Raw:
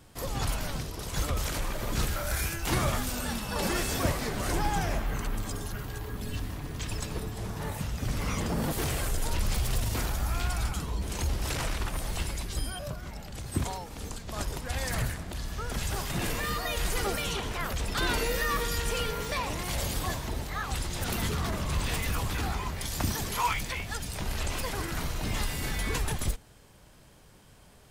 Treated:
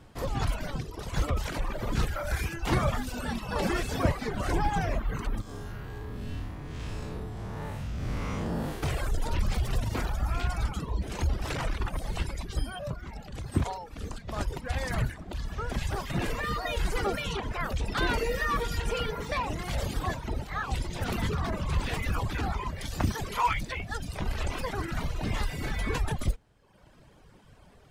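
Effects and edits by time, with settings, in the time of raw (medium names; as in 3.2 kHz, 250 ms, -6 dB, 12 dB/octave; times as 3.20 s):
5.41–8.83 s: spectral blur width 170 ms
whole clip: reverb removal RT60 1 s; low-pass 2.3 kHz 6 dB/octave; trim +3.5 dB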